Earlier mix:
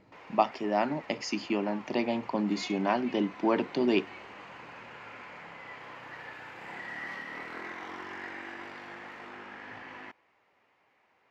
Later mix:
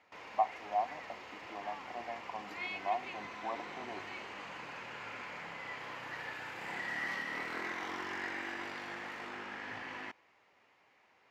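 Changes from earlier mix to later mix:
speech: add formant resonators in series a
master: add high-shelf EQ 3,600 Hz +8 dB

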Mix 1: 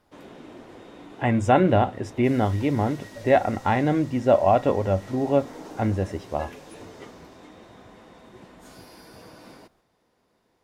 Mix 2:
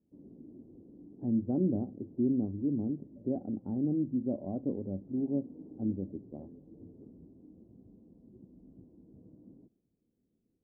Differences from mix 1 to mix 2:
speech: add high-pass filter 180 Hz 12 dB per octave
master: add transistor ladder low-pass 350 Hz, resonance 30%

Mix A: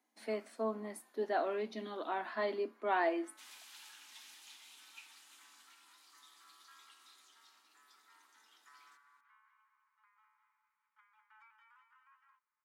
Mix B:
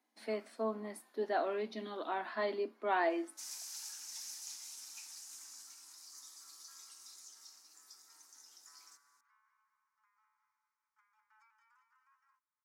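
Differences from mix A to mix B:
speech: add high shelf with overshoot 4,500 Hz −10.5 dB, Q 3
first sound −4.5 dB
master: add high shelf with overshoot 4,300 Hz +9.5 dB, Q 3

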